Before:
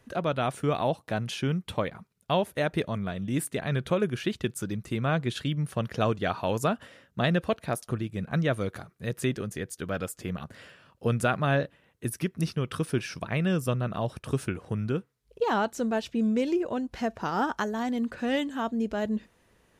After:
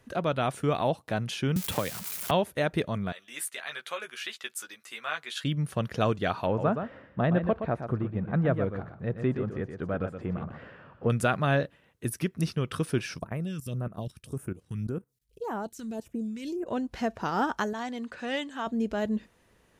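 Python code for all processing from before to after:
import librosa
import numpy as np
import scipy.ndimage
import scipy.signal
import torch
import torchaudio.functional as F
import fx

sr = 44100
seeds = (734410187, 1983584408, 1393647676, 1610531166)

y = fx.chain(x, sr, fx.crossing_spikes(level_db=-27.0),
    fx.band_squash(depth_pct=100), at=(1.56, 2.31))
y = fx.chain(y, sr, fx.highpass(hz=1200.0, slope=12),
    fx.doubler(ms=13.0, db=-4.5), at=(3.12, 5.44))
y = fx.chain(y, sr, fx.law_mismatch(coded='mu'),
    fx.lowpass(hz=1400.0, slope=12),
    fx.echo_single(ms=121, db=-8.0), at=(6.46, 11.1))
y = fx.chain(y, sr, fx.high_shelf(hz=10000.0, db=11.5),
    fx.level_steps(step_db=16),
    fx.phaser_stages(stages=2, low_hz=570.0, high_hz=4100.0, hz=1.8, feedback_pct=25), at=(13.18, 16.67))
y = fx.chain(y, sr, fx.lowpass(hz=8900.0, slope=12),
    fx.low_shelf(hz=420.0, db=-10.5), at=(17.73, 18.67))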